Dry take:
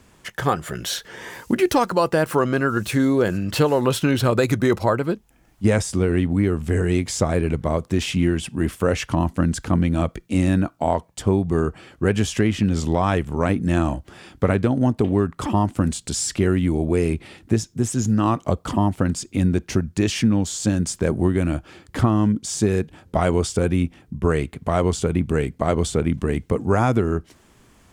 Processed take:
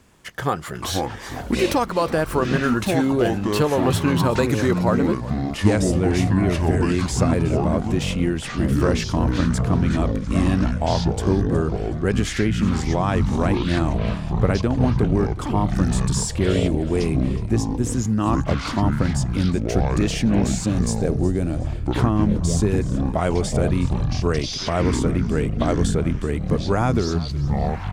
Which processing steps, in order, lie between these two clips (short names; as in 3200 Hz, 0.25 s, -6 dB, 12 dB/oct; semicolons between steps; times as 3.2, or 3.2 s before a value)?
echoes that change speed 0.255 s, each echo -7 st, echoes 3; spectral gain 20.4–21.65, 840–3500 Hz -6 dB; on a send: frequency-shifting echo 0.367 s, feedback 34%, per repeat -46 Hz, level -17 dB; on the sum: gain -2 dB